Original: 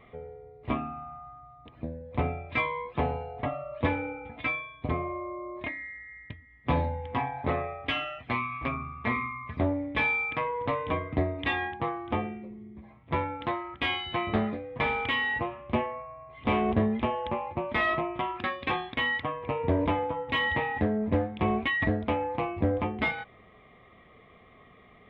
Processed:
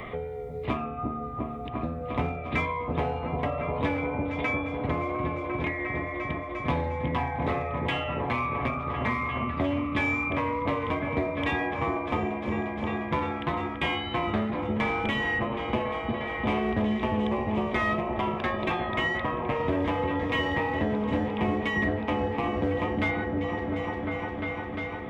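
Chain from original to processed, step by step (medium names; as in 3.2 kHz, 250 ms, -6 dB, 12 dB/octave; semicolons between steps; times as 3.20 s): de-hum 88.06 Hz, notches 9; wow and flutter 22 cents; in parallel at -8.5 dB: hard clipper -28 dBFS, distortion -9 dB; on the sum: delay with an opening low-pass 351 ms, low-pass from 400 Hz, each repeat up 1 oct, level -3 dB; on a send at -10 dB: reverberation RT60 0.50 s, pre-delay 3 ms; on the sum: three bands compressed up and down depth 70%; trim -2.5 dB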